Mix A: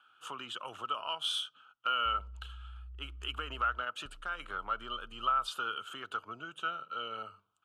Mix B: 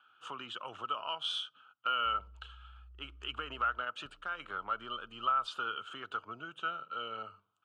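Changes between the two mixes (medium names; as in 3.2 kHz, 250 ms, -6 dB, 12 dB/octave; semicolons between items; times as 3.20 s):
background: add high-pass 130 Hz 6 dB/octave; master: add distance through air 92 m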